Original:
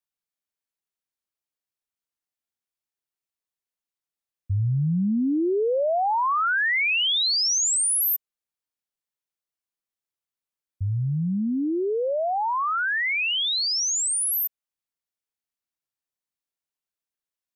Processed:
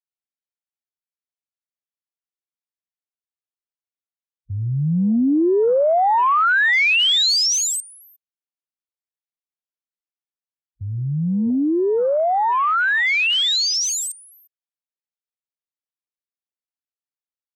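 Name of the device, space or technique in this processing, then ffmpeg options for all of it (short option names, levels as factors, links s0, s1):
over-cleaned archive recording: -af "highpass=160,lowpass=6200,afwtdn=0.0224,volume=2.11"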